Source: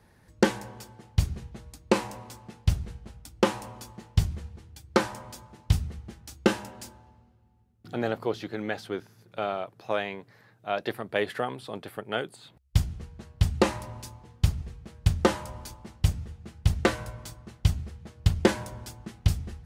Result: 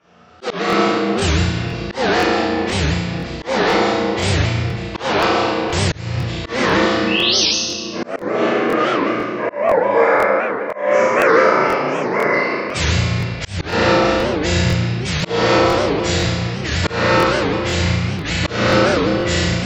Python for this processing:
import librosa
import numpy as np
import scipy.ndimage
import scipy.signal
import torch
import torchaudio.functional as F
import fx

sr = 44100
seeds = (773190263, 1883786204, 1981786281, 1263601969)

y = fx.partial_stretch(x, sr, pct=83)
y = fx.env_lowpass(y, sr, base_hz=2900.0, full_db=-21.5)
y = fx.highpass(y, sr, hz=440.0, slope=6)
y = fx.high_shelf(y, sr, hz=3500.0, db=10.5)
y = fx.spec_paint(y, sr, seeds[0], shape='rise', start_s=7.07, length_s=0.39, low_hz=2500.0, high_hz=6600.0, level_db=-33.0)
y = fx.room_flutter(y, sr, wall_m=5.9, rt60_s=0.77)
y = fx.room_shoebox(y, sr, seeds[1], volume_m3=120.0, walls='hard', distance_m=2.4)
y = fx.auto_swell(y, sr, attack_ms=291.0)
y = fx.buffer_crackle(y, sr, first_s=0.68, period_s=0.5, block=1024, kind='repeat')
y = fx.record_warp(y, sr, rpm=78.0, depth_cents=250.0)
y = y * 10.0 ** (1.5 / 20.0)